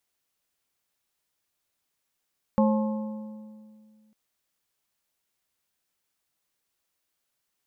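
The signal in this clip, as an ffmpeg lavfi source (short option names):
-f lavfi -i "aevalsrc='0.126*pow(10,-3*t/2.2)*sin(2*PI*215*t)+0.075*pow(10,-3*t/1.671)*sin(2*PI*537.5*t)+0.0447*pow(10,-3*t/1.451)*sin(2*PI*860*t)+0.0266*pow(10,-3*t/1.357)*sin(2*PI*1075*t)':d=1.55:s=44100"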